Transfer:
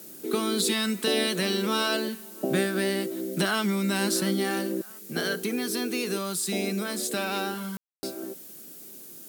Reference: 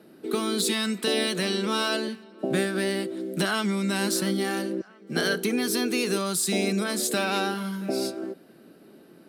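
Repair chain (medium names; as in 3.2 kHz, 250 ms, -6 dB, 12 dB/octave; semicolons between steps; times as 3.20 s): room tone fill 7.77–8.03 s; noise print and reduce 7 dB; trim 0 dB, from 4.99 s +3.5 dB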